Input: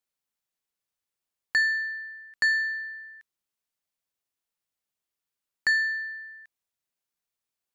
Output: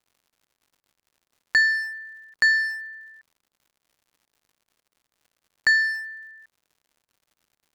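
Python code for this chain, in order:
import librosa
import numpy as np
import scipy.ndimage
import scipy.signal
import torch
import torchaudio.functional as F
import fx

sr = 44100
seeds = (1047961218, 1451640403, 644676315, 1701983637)

y = fx.wiener(x, sr, points=15)
y = fx.dmg_crackle(y, sr, seeds[0], per_s=140.0, level_db=-57.0)
y = F.gain(torch.from_numpy(y), 5.0).numpy()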